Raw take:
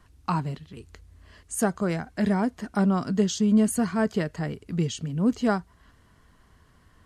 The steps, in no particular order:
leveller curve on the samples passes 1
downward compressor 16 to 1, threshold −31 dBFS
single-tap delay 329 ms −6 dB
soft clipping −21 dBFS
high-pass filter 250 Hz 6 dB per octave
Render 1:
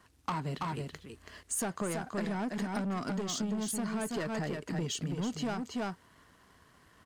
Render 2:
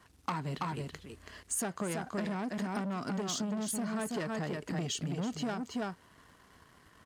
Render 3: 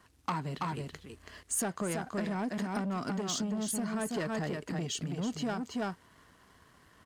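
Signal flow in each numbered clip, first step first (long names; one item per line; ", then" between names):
high-pass filter, then soft clipping, then leveller curve on the samples, then single-tap delay, then downward compressor
soft clipping, then single-tap delay, then leveller curve on the samples, then high-pass filter, then downward compressor
soft clipping, then single-tap delay, then downward compressor, then high-pass filter, then leveller curve on the samples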